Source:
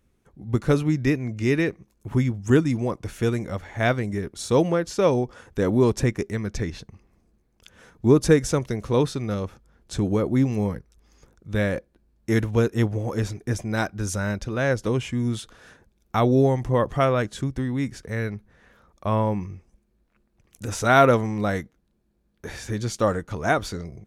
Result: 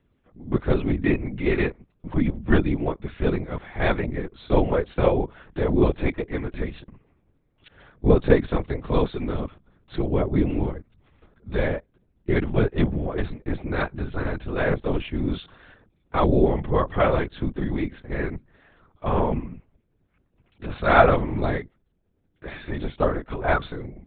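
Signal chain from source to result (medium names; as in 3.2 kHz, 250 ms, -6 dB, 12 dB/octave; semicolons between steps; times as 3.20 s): whisper effect; LPC vocoder at 8 kHz whisper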